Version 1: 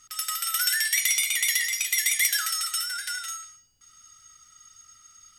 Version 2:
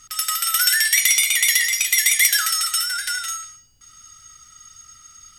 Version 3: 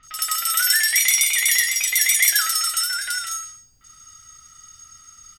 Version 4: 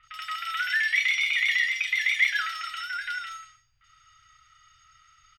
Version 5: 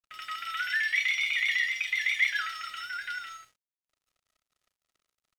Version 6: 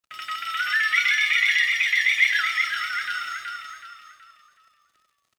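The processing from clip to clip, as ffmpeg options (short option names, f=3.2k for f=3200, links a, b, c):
-af "lowshelf=f=210:g=5.5,volume=7dB"
-filter_complex "[0:a]acrossover=split=3100[a][b];[b]adelay=30[c];[a][c]amix=inputs=2:normalize=0"
-filter_complex "[0:a]firequalizer=gain_entry='entry(130,0);entry(230,-19);entry(740,-3);entry(1300,5);entry(2500,10);entry(6200,-12);entry(9600,-21);entry(16000,-14)':delay=0.05:min_phase=1,acrossover=split=5600[a][b];[b]acompressor=threshold=-42dB:ratio=4:attack=1:release=60[c];[a][c]amix=inputs=2:normalize=0,volume=-9dB"
-af "aeval=exprs='sgn(val(0))*max(abs(val(0))-0.00237,0)':c=same,volume=-3dB"
-filter_complex "[0:a]highpass=63,bandreject=f=460:w=15,asplit=2[a][b];[b]asplit=5[c][d][e][f][g];[c]adelay=374,afreqshift=-36,volume=-4.5dB[h];[d]adelay=748,afreqshift=-72,volume=-12.9dB[i];[e]adelay=1122,afreqshift=-108,volume=-21.3dB[j];[f]adelay=1496,afreqshift=-144,volume=-29.7dB[k];[g]adelay=1870,afreqshift=-180,volume=-38.1dB[l];[h][i][j][k][l]amix=inputs=5:normalize=0[m];[a][m]amix=inputs=2:normalize=0,volume=6dB"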